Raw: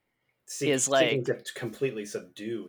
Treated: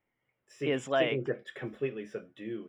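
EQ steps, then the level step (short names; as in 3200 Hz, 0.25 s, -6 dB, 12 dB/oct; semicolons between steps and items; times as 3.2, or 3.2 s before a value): polynomial smoothing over 25 samples; -4.0 dB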